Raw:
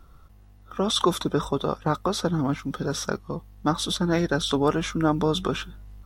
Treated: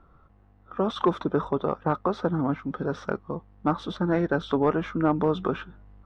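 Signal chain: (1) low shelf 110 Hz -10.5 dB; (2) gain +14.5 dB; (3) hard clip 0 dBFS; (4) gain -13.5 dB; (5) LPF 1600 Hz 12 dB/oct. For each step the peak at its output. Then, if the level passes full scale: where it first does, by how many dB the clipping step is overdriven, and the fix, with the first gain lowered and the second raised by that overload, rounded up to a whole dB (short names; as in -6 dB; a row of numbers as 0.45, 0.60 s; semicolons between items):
-8.0, +6.5, 0.0, -13.5, -13.0 dBFS; step 2, 6.5 dB; step 2 +7.5 dB, step 4 -6.5 dB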